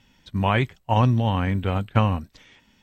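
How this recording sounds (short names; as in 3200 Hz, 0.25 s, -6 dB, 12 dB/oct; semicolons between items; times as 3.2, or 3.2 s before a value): noise floor -61 dBFS; spectral tilt -6.0 dB/oct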